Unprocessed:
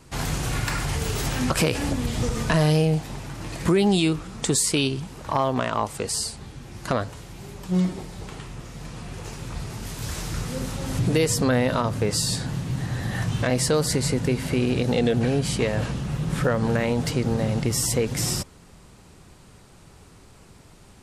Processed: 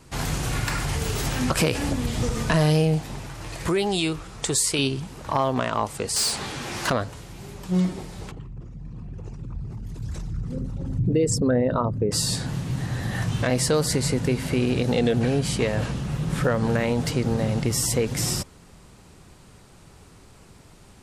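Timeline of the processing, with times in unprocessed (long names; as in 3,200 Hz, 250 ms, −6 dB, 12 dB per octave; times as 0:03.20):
0:03.27–0:04.79: parametric band 220 Hz −10 dB 0.95 octaves
0:06.16–0:06.90: mid-hump overdrive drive 23 dB, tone 6,900 Hz, clips at −14.5 dBFS
0:08.31–0:12.12: spectral envelope exaggerated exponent 2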